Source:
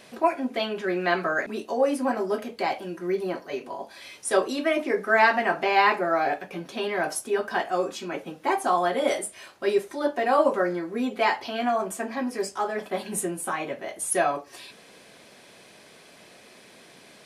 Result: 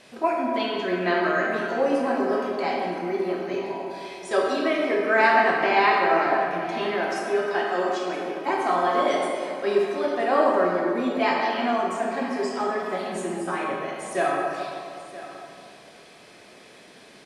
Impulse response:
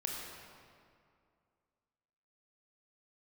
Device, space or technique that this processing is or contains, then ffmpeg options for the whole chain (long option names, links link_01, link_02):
stairwell: -filter_complex "[0:a]asettb=1/sr,asplit=3[link_01][link_02][link_03];[link_01]atrim=end=6.914[link_04];[link_02]atrim=start=6.91:end=8.5,asetpts=PTS-STARTPTS,afade=type=in:duration=0.004:curve=qsin,afade=type=out:start_time=1.586:duration=0.004:curve=qsin,highpass=200[link_05];[link_03]atrim=start=8.496[link_06];[link_04][link_05]acrossfade=duration=0.004:curve1=hsin:curve2=qsin[link_07];[link_07][link_06]acrossfade=duration=0.004:curve1=qsin:curve2=hsin,acrossover=split=7300[link_08][link_09];[link_09]acompressor=threshold=-60dB:ratio=4:attack=1:release=60[link_10];[link_08][link_10]amix=inputs=2:normalize=0,lowpass=11000,aecho=1:1:976:0.158[link_11];[1:a]atrim=start_sample=2205[link_12];[link_11][link_12]afir=irnorm=-1:irlink=0"